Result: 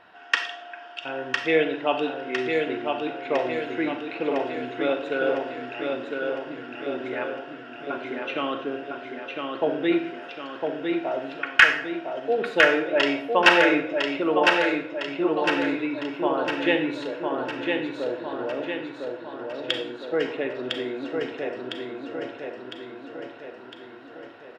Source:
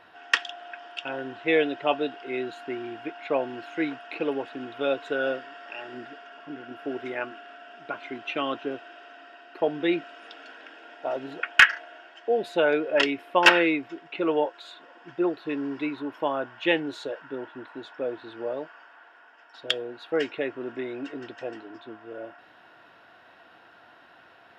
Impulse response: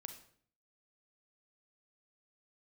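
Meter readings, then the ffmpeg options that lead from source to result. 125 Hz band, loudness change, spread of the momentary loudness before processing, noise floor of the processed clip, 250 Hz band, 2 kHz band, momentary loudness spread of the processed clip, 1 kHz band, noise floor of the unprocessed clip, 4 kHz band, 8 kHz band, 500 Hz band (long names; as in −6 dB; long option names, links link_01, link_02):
+3.5 dB, +2.0 dB, 20 LU, −43 dBFS, +3.5 dB, +2.5 dB, 18 LU, +3.0 dB, −54 dBFS, +2.0 dB, −0.5 dB, +3.0 dB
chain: -filter_complex "[0:a]highshelf=frequency=7200:gain=-8.5,aecho=1:1:1006|2012|3018|4024|5030|6036|7042:0.631|0.341|0.184|0.0994|0.0537|0.029|0.0156[link_01];[1:a]atrim=start_sample=2205[link_02];[link_01][link_02]afir=irnorm=-1:irlink=0,volume=6dB"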